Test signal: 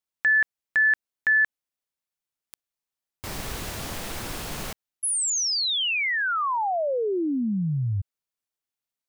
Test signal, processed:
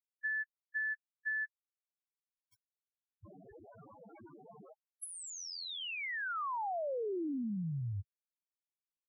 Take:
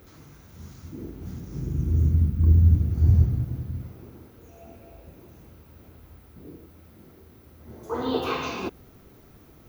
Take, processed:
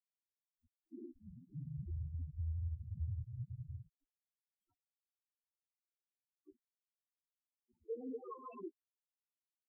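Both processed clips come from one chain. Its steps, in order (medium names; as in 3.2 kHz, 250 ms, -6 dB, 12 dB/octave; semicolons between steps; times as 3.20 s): high-pass 280 Hz 6 dB/octave; compression 12:1, threshold -35 dBFS; small samples zeroed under -39 dBFS; loudest bins only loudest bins 2; trim +1.5 dB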